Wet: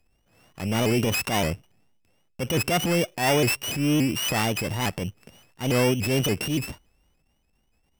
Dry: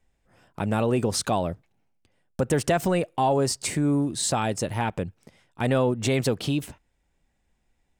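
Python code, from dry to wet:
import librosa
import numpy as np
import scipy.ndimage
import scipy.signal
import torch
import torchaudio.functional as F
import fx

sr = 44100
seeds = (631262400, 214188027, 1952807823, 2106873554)

y = np.r_[np.sort(x[:len(x) // 16 * 16].reshape(-1, 16), axis=1).ravel(), x[len(x) // 16 * 16:]]
y = fx.transient(y, sr, attack_db=-9, sustain_db=5)
y = fx.vibrato_shape(y, sr, shape='saw_up', rate_hz=3.5, depth_cents=160.0)
y = y * librosa.db_to_amplitude(1.5)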